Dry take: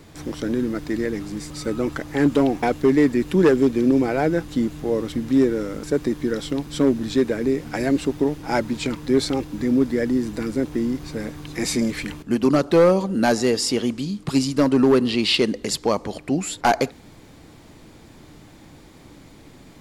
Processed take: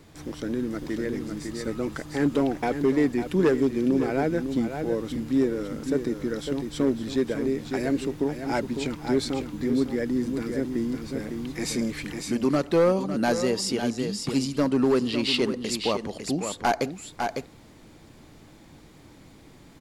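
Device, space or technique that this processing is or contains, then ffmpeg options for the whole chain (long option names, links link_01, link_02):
ducked delay: -filter_complex "[0:a]asplit=3[link_01][link_02][link_03];[link_02]adelay=553,volume=-5dB[link_04];[link_03]apad=whole_len=897760[link_05];[link_04][link_05]sidechaincompress=threshold=-20dB:ratio=8:attack=49:release=665[link_06];[link_01][link_06]amix=inputs=2:normalize=0,volume=-5.5dB"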